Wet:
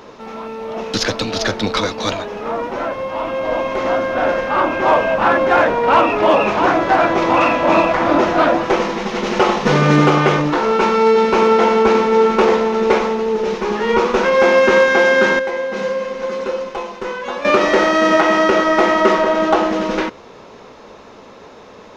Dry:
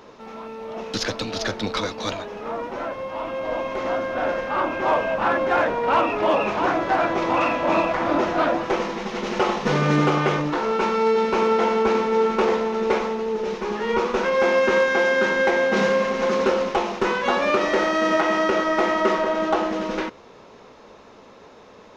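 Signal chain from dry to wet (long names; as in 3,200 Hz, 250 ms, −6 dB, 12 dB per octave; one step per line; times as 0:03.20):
0:15.39–0:17.45: tuned comb filter 510 Hz, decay 0.17 s, harmonics all, mix 80%
level +7 dB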